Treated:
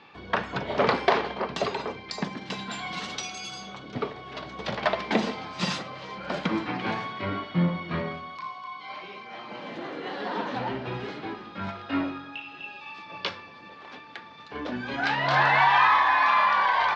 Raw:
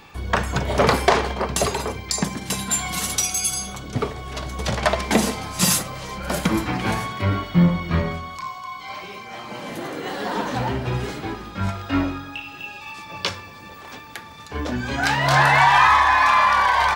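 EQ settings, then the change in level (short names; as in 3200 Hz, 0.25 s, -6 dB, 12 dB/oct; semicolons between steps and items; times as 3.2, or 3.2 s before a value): HPF 180 Hz 12 dB/oct; LPF 4400 Hz 24 dB/oct; -5.0 dB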